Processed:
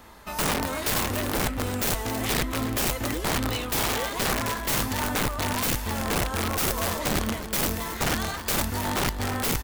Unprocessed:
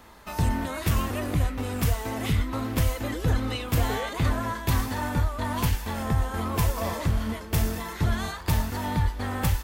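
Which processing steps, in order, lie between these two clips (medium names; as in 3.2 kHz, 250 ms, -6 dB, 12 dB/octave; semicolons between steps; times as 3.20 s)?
treble shelf 8.2 kHz +2.5 dB; integer overflow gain 21.5 dB; delay 272 ms -13 dB; trim +1.5 dB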